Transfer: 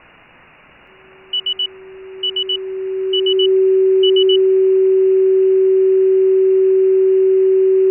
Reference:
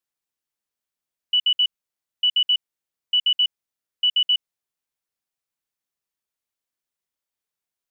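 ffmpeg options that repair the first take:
-af "bandreject=f=380:w=30,afwtdn=0.013,asetnsamples=n=441:p=0,asendcmd='5.85 volume volume -8dB',volume=0dB"

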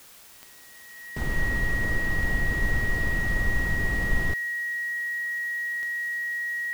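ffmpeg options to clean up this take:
-af "adeclick=t=4,bandreject=f=1.9k:w=30,afftdn=nr=23:nf=-49"

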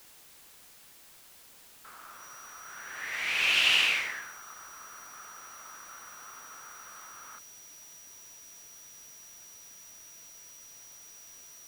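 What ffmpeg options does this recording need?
-af "bandreject=f=5.8k:w=30,afftdn=nr=24:nf=-55"

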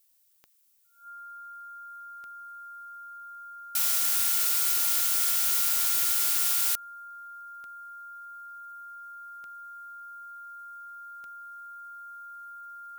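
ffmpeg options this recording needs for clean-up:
-af "adeclick=t=4,bandreject=f=1.4k:w=30,agate=range=-21dB:threshold=-36dB"

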